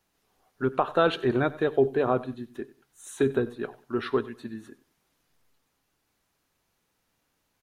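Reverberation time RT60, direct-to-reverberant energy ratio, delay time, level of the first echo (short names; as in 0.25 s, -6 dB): none, none, 94 ms, -19.5 dB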